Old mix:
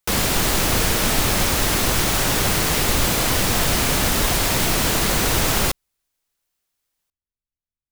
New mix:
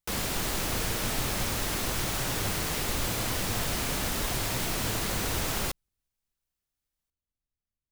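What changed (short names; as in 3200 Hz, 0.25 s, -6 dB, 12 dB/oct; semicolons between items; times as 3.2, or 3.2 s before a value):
speech +3.5 dB; background -11.0 dB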